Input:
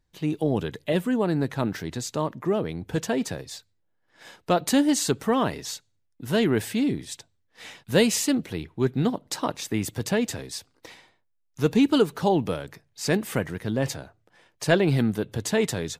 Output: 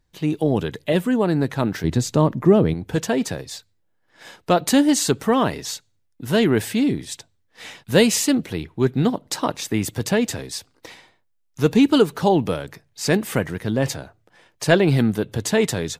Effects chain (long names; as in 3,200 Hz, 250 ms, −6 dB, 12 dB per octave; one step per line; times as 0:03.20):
0:01.84–0:02.74: low-shelf EQ 400 Hz +10.5 dB
level +4.5 dB